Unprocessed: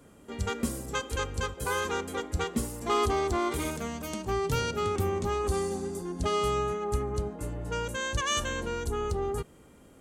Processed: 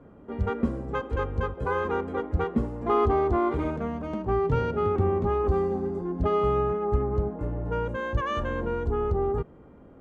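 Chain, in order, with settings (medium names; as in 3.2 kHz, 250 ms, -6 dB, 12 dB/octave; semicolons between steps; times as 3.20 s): low-pass 1.2 kHz 12 dB/octave; trim +5 dB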